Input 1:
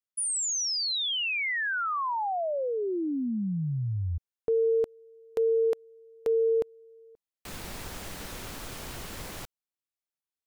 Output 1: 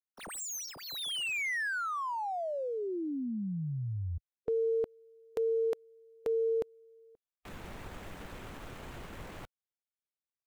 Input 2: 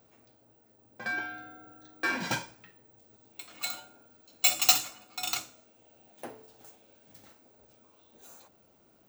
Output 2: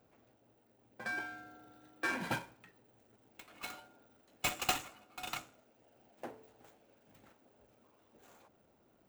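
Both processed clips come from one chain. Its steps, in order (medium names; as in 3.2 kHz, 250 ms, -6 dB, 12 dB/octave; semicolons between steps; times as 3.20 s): median filter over 9 samples; harmonic-percussive split harmonic -3 dB; trim -2.5 dB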